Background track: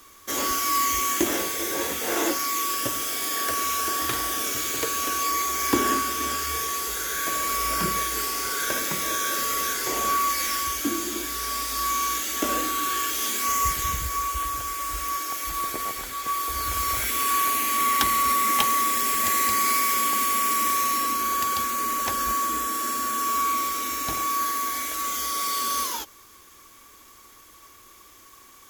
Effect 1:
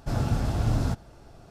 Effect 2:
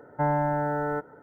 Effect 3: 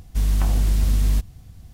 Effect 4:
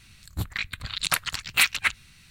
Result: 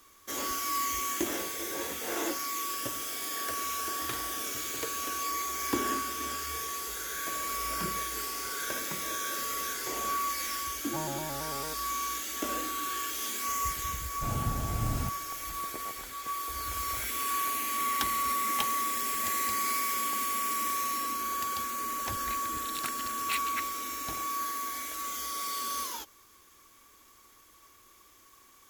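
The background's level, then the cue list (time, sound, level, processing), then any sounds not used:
background track -8 dB
10.74 s: add 2 -12.5 dB + vibrato with a chosen wave square 4.5 Hz, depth 100 cents
14.15 s: add 1 -7 dB
21.72 s: add 4 -14 dB
not used: 3

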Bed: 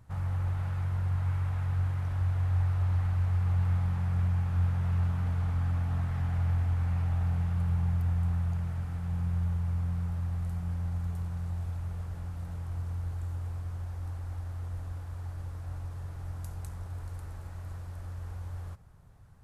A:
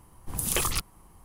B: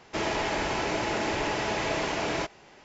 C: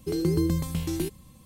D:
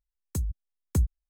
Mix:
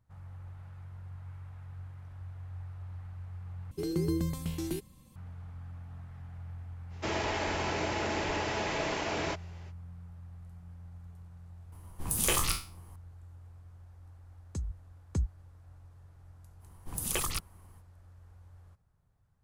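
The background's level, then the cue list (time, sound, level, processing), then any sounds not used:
bed -15.5 dB
3.71 s: replace with C -6 dB
6.89 s: add B -4 dB, fades 0.05 s
11.72 s: add A -3 dB + spectral sustain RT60 0.36 s
14.20 s: add D -6.5 dB + low-pass 7.5 kHz 24 dB/octave
16.59 s: add A -5.5 dB, fades 0.05 s

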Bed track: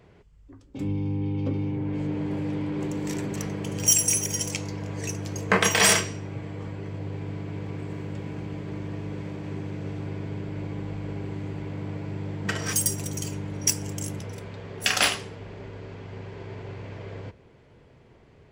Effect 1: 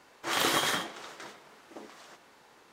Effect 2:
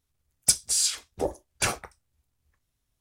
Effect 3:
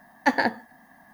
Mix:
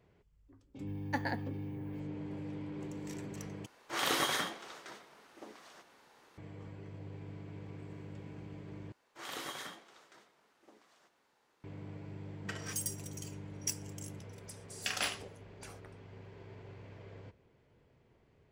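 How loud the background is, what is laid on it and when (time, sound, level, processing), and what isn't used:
bed track -13 dB
0.87 s: add 3 -14.5 dB + treble shelf 12 kHz +8 dB
3.66 s: replace with 1 -4.5 dB + band-stop 7.4 kHz, Q 23
8.92 s: replace with 1 -15.5 dB
14.01 s: add 2 -14.5 dB + compression 5:1, threshold -34 dBFS

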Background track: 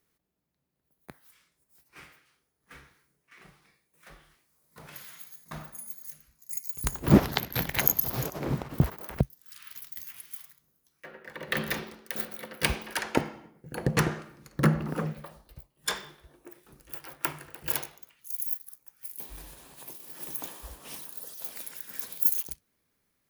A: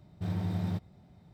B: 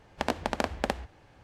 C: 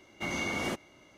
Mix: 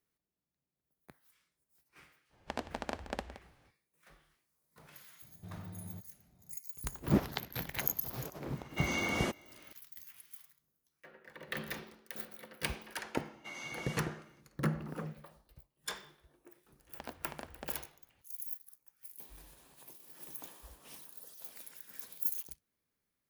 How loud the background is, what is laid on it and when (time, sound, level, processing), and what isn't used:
background track -10 dB
2.29 s: add B -10 dB, fades 0.05 s + delay 170 ms -13.5 dB
5.22 s: add A -15 dB + three bands compressed up and down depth 40%
8.56 s: add C -1 dB
13.24 s: add C -9 dB + high-pass 880 Hz 6 dB/octave
16.79 s: add B -17.5 dB

